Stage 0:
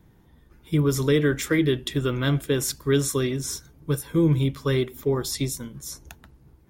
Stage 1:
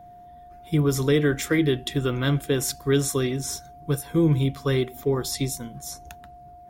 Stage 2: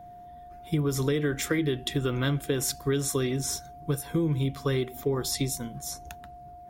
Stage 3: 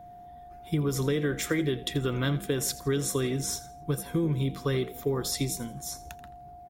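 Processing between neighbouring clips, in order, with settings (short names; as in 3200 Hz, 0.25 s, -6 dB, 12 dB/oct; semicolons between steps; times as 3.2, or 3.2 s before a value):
whine 710 Hz -44 dBFS
compressor, threshold -23 dBFS, peak gain reduction 8 dB
frequency-shifting echo 83 ms, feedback 33%, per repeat +53 Hz, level -17 dB; gain -1 dB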